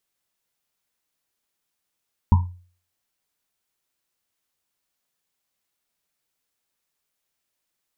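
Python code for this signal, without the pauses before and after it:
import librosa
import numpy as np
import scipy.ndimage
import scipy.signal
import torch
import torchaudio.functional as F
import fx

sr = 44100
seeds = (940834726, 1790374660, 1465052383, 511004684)

y = fx.risset_drum(sr, seeds[0], length_s=1.1, hz=89.0, decay_s=0.44, noise_hz=950.0, noise_width_hz=160.0, noise_pct=15)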